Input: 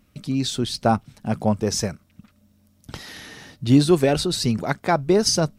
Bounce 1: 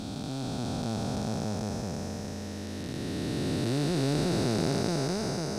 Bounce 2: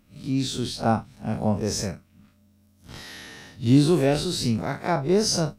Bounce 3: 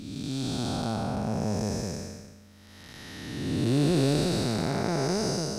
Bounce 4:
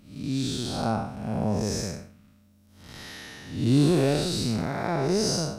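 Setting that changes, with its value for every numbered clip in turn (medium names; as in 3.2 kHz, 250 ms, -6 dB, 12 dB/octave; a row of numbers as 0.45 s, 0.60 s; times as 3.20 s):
spectral blur, width: 1620 ms, 86 ms, 598 ms, 232 ms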